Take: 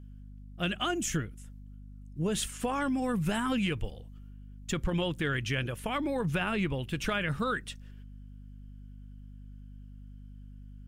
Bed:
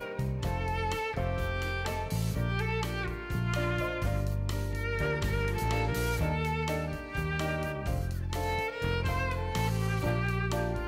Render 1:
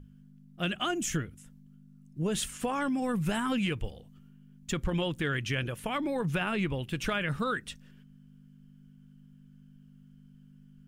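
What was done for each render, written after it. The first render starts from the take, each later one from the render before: notches 50/100 Hz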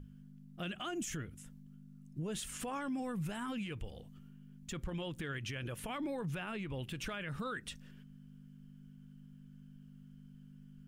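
compressor, threshold -34 dBFS, peak gain reduction 8.5 dB; limiter -32 dBFS, peak gain reduction 8 dB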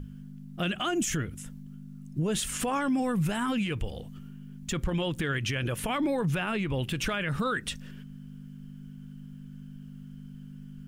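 gain +11 dB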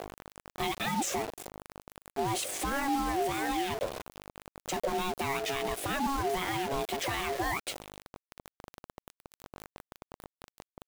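requantised 6-bit, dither none; ring modulator 550 Hz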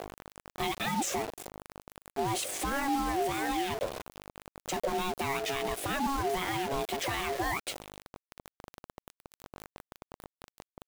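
nothing audible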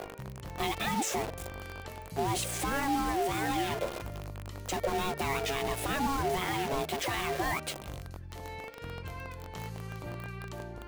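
add bed -11 dB

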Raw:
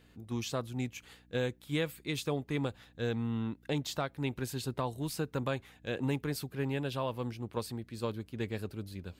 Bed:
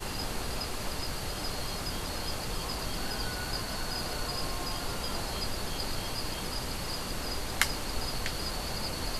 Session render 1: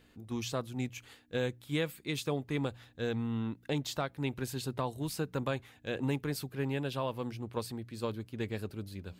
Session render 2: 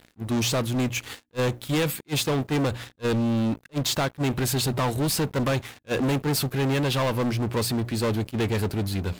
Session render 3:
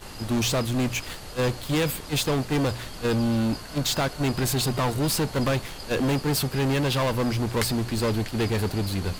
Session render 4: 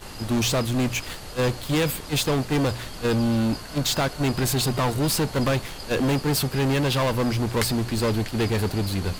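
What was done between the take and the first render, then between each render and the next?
de-hum 60 Hz, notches 3
sample leveller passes 5; attack slew limiter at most 570 dB/s
add bed -4.5 dB
gain +1.5 dB

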